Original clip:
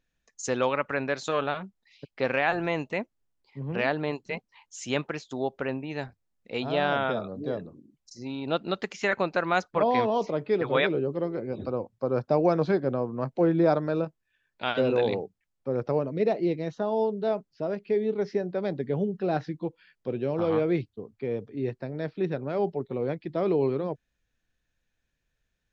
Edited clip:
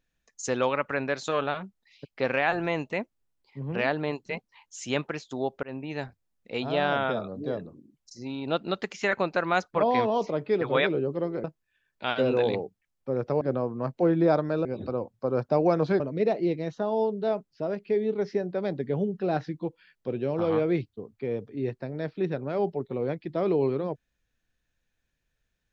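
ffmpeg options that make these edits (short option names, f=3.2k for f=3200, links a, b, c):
-filter_complex "[0:a]asplit=6[a][b][c][d][e][f];[a]atrim=end=5.63,asetpts=PTS-STARTPTS,afade=t=out:st=5.626:d=0.004:c=hsin[g];[b]atrim=start=5.63:end=11.442,asetpts=PTS-STARTPTS,afade=t=in:d=0.26:c=qsin[h];[c]atrim=start=14.028:end=16.002[i];[d]atrim=start=12.788:end=14.032[j];[e]atrim=start=11.438:end=12.792[k];[f]atrim=start=15.998[l];[g][h]concat=n=2:v=0:a=1[m];[m][i]acrossfade=d=0.004:c1=hsin:c2=hsin[n];[n][j]acrossfade=d=0.004:c1=hsin:c2=hsin[o];[o][k]acrossfade=d=0.004:c1=hsin:c2=hsin[p];[p][l]acrossfade=d=0.004:c1=hsin:c2=hsin"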